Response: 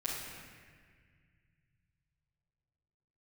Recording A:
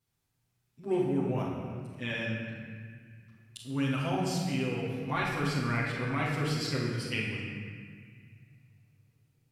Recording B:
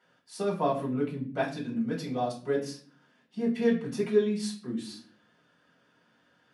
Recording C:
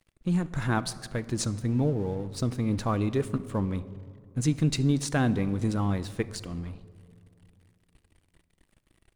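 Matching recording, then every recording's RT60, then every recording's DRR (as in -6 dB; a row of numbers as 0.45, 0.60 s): A; 1.8, 0.45, 2.6 s; -9.0, -5.0, 13.5 dB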